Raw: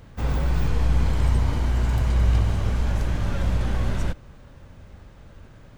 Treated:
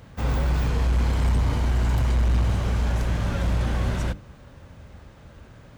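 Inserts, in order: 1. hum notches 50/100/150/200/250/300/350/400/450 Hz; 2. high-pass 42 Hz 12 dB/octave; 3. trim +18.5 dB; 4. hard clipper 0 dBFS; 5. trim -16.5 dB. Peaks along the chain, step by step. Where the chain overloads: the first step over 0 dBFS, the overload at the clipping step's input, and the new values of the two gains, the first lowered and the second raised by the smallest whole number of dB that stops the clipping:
-9.5 dBFS, -11.0 dBFS, +7.5 dBFS, 0.0 dBFS, -16.5 dBFS; step 3, 7.5 dB; step 3 +10.5 dB, step 5 -8.5 dB

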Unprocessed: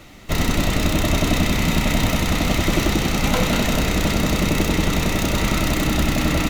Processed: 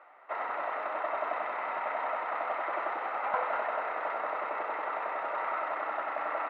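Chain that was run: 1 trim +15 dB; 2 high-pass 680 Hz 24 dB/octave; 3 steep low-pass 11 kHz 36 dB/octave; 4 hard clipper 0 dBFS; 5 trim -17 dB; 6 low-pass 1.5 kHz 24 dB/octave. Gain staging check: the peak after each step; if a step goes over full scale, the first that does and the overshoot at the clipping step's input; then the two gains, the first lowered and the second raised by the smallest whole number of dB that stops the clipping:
+10.0 dBFS, +5.0 dBFS, +5.5 dBFS, 0.0 dBFS, -17.0 dBFS, -17.5 dBFS; step 1, 5.5 dB; step 1 +9 dB, step 5 -11 dB

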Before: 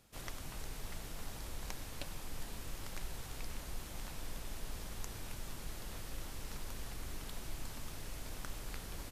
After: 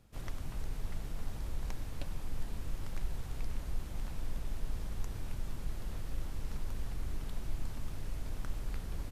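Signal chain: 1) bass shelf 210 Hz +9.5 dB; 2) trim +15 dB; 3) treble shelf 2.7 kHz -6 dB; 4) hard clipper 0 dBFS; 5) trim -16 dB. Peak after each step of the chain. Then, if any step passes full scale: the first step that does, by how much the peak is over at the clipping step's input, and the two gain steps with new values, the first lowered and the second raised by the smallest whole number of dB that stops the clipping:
-17.5 dBFS, -2.5 dBFS, -5.0 dBFS, -5.0 dBFS, -21.0 dBFS; nothing clips

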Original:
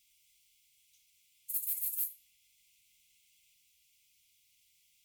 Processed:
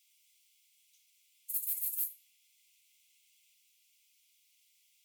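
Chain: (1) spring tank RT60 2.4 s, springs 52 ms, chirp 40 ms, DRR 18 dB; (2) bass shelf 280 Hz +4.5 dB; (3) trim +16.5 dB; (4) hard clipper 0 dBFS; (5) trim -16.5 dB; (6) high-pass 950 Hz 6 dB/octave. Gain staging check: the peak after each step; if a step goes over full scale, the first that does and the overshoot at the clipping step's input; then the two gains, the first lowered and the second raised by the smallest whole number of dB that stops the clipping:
-19.5 dBFS, -19.5 dBFS, -3.0 dBFS, -3.0 dBFS, -19.5 dBFS, -19.5 dBFS; nothing clips

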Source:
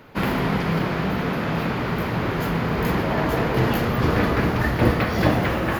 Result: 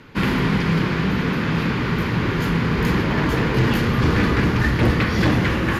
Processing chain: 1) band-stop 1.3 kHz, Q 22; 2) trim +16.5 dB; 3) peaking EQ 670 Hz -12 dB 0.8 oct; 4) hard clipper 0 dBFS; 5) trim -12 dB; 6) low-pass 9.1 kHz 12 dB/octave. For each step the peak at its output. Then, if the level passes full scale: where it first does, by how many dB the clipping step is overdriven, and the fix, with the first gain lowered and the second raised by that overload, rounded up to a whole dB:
-3.5 dBFS, +13.0 dBFS, +9.0 dBFS, 0.0 dBFS, -12.0 dBFS, -11.5 dBFS; step 2, 9.0 dB; step 2 +7.5 dB, step 5 -3 dB

